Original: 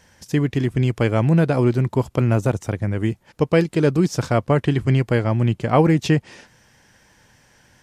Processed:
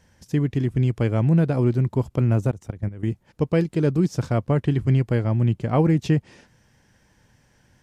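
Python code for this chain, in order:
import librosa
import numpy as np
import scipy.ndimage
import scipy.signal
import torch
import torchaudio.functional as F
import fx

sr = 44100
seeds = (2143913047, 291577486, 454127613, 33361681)

y = fx.low_shelf(x, sr, hz=380.0, db=8.5)
y = fx.level_steps(y, sr, step_db=14, at=(2.5, 3.08))
y = F.gain(torch.from_numpy(y), -8.5).numpy()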